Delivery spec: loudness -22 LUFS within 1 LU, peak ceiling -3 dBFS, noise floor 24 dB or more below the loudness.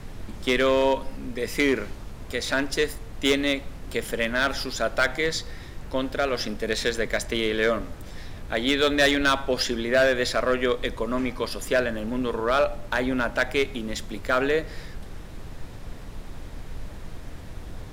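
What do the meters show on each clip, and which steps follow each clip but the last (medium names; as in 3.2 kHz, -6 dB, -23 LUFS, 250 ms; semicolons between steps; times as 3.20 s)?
clipped samples 0.4%; clipping level -13.5 dBFS; noise floor -40 dBFS; noise floor target -49 dBFS; loudness -25.0 LUFS; peak level -13.5 dBFS; loudness target -22.0 LUFS
-> clip repair -13.5 dBFS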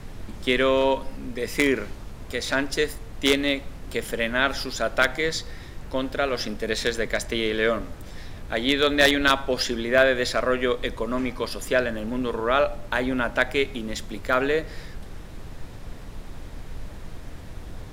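clipped samples 0.0%; noise floor -40 dBFS; noise floor target -48 dBFS
-> noise print and reduce 8 dB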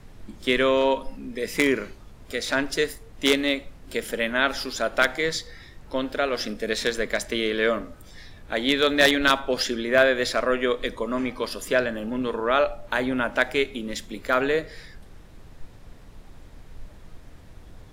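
noise floor -47 dBFS; noise floor target -48 dBFS
-> noise print and reduce 6 dB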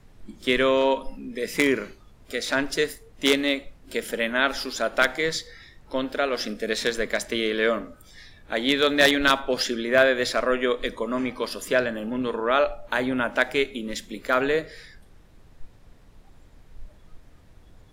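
noise floor -52 dBFS; loudness -24.5 LUFS; peak level -4.5 dBFS; loudness target -22.0 LUFS
-> trim +2.5 dB; peak limiter -3 dBFS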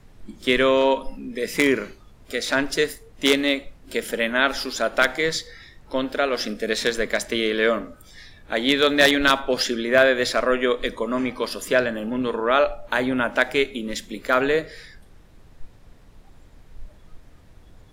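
loudness -22.0 LUFS; peak level -3.0 dBFS; noise floor -50 dBFS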